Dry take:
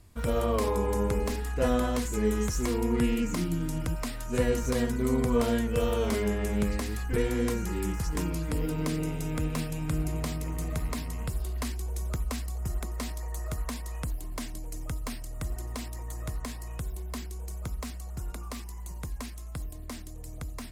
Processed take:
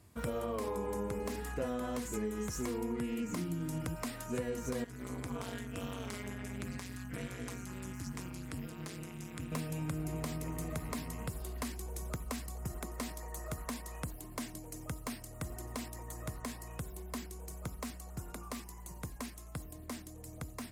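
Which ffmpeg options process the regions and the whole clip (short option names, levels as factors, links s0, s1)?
-filter_complex "[0:a]asettb=1/sr,asplit=3[s0][s1][s2];[s0]atrim=end=4.844[s3];[s1]atrim=start=4.84:end=9.52,asetpts=PTS-STARTPTS,afade=t=in:d=0.004:c=qsin,afade=t=out:st=4.676:d=0.004:c=qsin,acrossover=split=9400[s4][s5];[s5]acompressor=threshold=0.00282:ratio=4:attack=1:release=60[s6];[s4][s6]amix=inputs=2:normalize=0,equalizer=f=340:t=o:w=2.4:g=-14.5,tremolo=f=190:d=1[s7];[s2]atrim=start=9.516[s8];[s3][s7]acrossfade=d=0.004:c1=hsin:c2=qsin[s9];[s9][s8]acrossfade=d=0.004:c1=qsin:c2=hsin,highpass=96,equalizer=f=4000:t=o:w=1.5:g=-3,acompressor=threshold=0.0251:ratio=6,volume=0.841"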